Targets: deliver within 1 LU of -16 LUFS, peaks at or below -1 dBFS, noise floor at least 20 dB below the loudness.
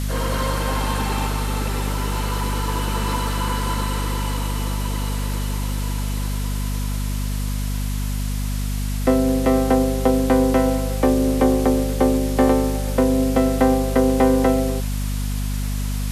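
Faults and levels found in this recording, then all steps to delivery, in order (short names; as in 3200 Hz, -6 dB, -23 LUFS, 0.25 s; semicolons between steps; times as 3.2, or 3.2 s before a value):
hum 50 Hz; harmonics up to 250 Hz; hum level -21 dBFS; noise floor -23 dBFS; noise floor target -42 dBFS; loudness -21.5 LUFS; peak -4.0 dBFS; loudness target -16.0 LUFS
-> notches 50/100/150/200/250 Hz; denoiser 19 dB, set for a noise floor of -23 dBFS; gain +5.5 dB; limiter -1 dBFS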